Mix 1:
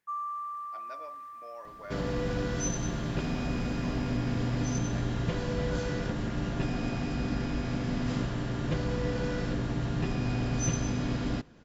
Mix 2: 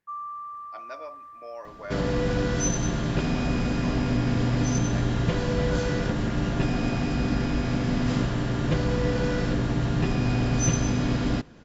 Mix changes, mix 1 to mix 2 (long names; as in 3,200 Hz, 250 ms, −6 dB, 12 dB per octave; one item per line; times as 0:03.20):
speech +6.5 dB
first sound: add spectral tilt −2 dB per octave
second sound +6.0 dB